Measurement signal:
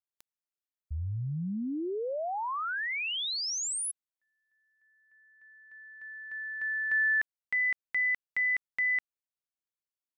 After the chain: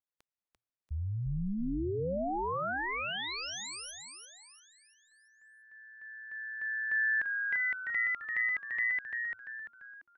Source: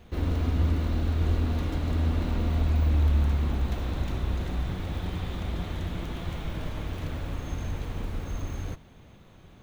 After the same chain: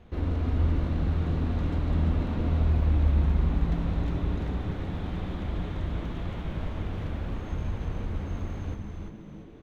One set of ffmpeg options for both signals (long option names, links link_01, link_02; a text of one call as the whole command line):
ffmpeg -i in.wav -filter_complex "[0:a]aemphasis=mode=reproduction:type=75kf,asplit=6[link_01][link_02][link_03][link_04][link_05][link_06];[link_02]adelay=342,afreqshift=-120,volume=-4.5dB[link_07];[link_03]adelay=684,afreqshift=-240,volume=-11.8dB[link_08];[link_04]adelay=1026,afreqshift=-360,volume=-19.2dB[link_09];[link_05]adelay=1368,afreqshift=-480,volume=-26.5dB[link_10];[link_06]adelay=1710,afreqshift=-600,volume=-33.8dB[link_11];[link_01][link_07][link_08][link_09][link_10][link_11]amix=inputs=6:normalize=0,volume=-1dB" out.wav